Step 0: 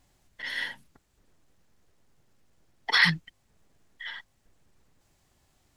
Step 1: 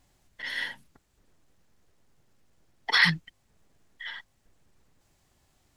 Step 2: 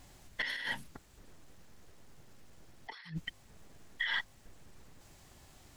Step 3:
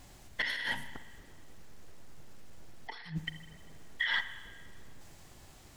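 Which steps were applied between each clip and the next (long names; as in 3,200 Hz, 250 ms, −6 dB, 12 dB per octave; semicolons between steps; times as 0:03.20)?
no processing that can be heard
compressor whose output falls as the input rises −41 dBFS, ratio −1
convolution reverb RT60 1.7 s, pre-delay 38 ms, DRR 10.5 dB; level +2.5 dB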